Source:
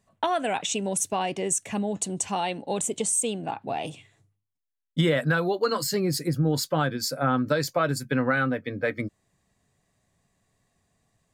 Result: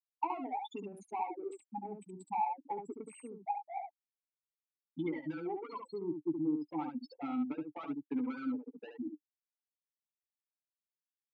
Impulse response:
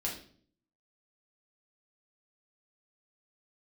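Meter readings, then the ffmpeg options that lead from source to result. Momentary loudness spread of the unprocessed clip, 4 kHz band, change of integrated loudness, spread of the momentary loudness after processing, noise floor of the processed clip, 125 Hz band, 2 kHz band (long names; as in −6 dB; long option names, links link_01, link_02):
7 LU, below −25 dB, −13.0 dB, 11 LU, below −85 dBFS, −24.0 dB, −23.5 dB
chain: -filter_complex "[0:a]acrusher=bits=7:mode=log:mix=0:aa=0.000001,highpass=frequency=120:poles=1,afftfilt=real='re*gte(hypot(re,im),0.2)':imag='im*gte(hypot(re,im),0.2)':win_size=1024:overlap=0.75,highshelf=frequency=8200:gain=10,acompressor=threshold=-27dB:ratio=4,asplit=2[link_01][link_02];[link_02]highpass=frequency=720:poles=1,volume=15dB,asoftclip=type=tanh:threshold=-17dB[link_03];[link_01][link_03]amix=inputs=2:normalize=0,lowpass=frequency=5100:poles=1,volume=-6dB,asplit=3[link_04][link_05][link_06];[link_04]bandpass=frequency=300:width_type=q:width=8,volume=0dB[link_07];[link_05]bandpass=frequency=870:width_type=q:width=8,volume=-6dB[link_08];[link_06]bandpass=frequency=2240:width_type=q:width=8,volume=-9dB[link_09];[link_07][link_08][link_09]amix=inputs=3:normalize=0,aecho=1:1:12|71:0.355|0.501,adynamicequalizer=threshold=0.002:dfrequency=1700:dqfactor=0.7:tfrequency=1700:tqfactor=0.7:attack=5:release=100:ratio=0.375:range=2:mode=cutabove:tftype=highshelf,volume=2.5dB"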